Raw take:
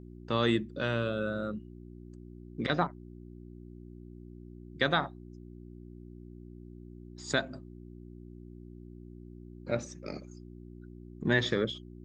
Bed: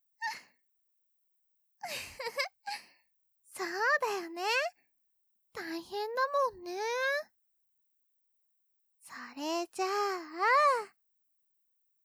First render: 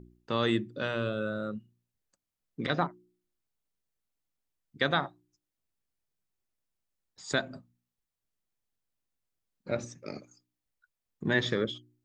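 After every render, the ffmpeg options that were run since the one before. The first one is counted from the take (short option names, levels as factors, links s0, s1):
-af "bandreject=f=60:t=h:w=4,bandreject=f=120:t=h:w=4,bandreject=f=180:t=h:w=4,bandreject=f=240:t=h:w=4,bandreject=f=300:t=h:w=4,bandreject=f=360:t=h:w=4"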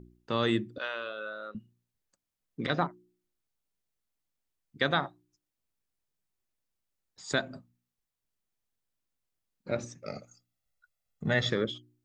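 -filter_complex "[0:a]asettb=1/sr,asplit=3[s0][s1][s2];[s0]atrim=end=0.784[s3];[s1]atrim=start=0.78:end=1.55,asetpts=PTS-STARTPTS,afade=t=in:d=0.004:c=qsin,afade=t=out:st=0.766:d=0.004:c=qsin,highpass=730,lowpass=4600[s4];[s2]atrim=start=1.546[s5];[s3][s4]acrossfade=d=0.004:c1=hsin:c2=qsin[s6];[s6][s5]acrossfade=d=0.004:c1=qsin:c2=hsin,asettb=1/sr,asplit=3[s7][s8][s9];[s7]atrim=end=10.034[s10];[s8]atrim=start=10.03:end=11.5,asetpts=PTS-STARTPTS,afade=t=in:d=0.004:c=qsin,afade=t=out:st=1.466:d=0.004:c=qsin,aecho=1:1:1.5:0.72,atrim=end_sample=64827[s11];[s9]atrim=start=11.496[s12];[s10][s11]acrossfade=d=0.004:c1=hsin:c2=qsin[s13];[s13][s12]acrossfade=d=0.004:c1=qsin:c2=hsin"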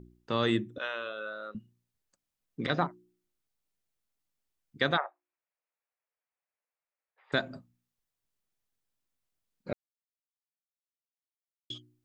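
-filter_complex "[0:a]asettb=1/sr,asplit=3[s0][s1][s2];[s0]atrim=end=0.574[s3];[s1]atrim=start=0.57:end=1.29,asetpts=PTS-STARTPTS,afade=t=in:d=0.004:c=qsin,afade=t=out:st=0.716:d=0.004:c=qsin,asuperstop=centerf=4600:order=8:qfactor=4.7[s4];[s2]atrim=start=1.286[s5];[s3][s4]acrossfade=d=0.004:c1=hsin:c2=qsin[s6];[s6][s5]acrossfade=d=0.004:c1=qsin:c2=hsin,asplit=3[s7][s8][s9];[s7]afade=t=out:st=4.96:d=0.02[s10];[s8]asuperpass=centerf=1100:order=12:qfactor=0.51,afade=t=in:st=4.96:d=0.02,afade=t=out:st=7.32:d=0.02[s11];[s9]afade=t=in:st=7.32:d=0.02[s12];[s10][s11][s12]amix=inputs=3:normalize=0,asplit=3[s13][s14][s15];[s13]atrim=end=9.73,asetpts=PTS-STARTPTS,afade=t=out:st=9.726:d=0.004:c=hsin[s16];[s14]atrim=start=9.73:end=11.7,asetpts=PTS-STARTPTS,volume=0[s17];[s15]atrim=start=11.7,asetpts=PTS-STARTPTS,afade=t=in:d=0.004:c=hsin[s18];[s16][s17][s18]concat=n=3:v=0:a=1"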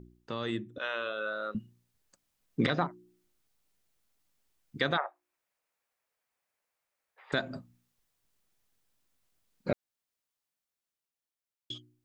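-af "alimiter=limit=0.0668:level=0:latency=1:release=394,dynaudnorm=f=170:g=17:m=2.66"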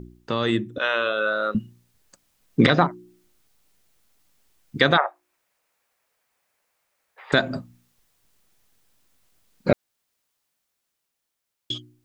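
-af "volume=3.76"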